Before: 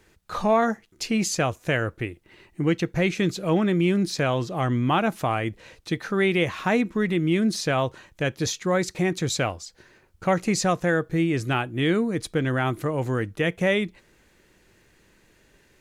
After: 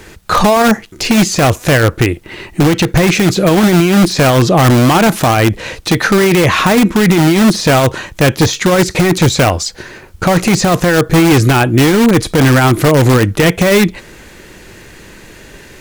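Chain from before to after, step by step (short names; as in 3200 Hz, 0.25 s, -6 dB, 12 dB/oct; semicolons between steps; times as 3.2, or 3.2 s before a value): de-esser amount 90%; in parallel at -6 dB: wrapped overs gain 20.5 dB; on the sum: maximiser +20.5 dB; gain -1 dB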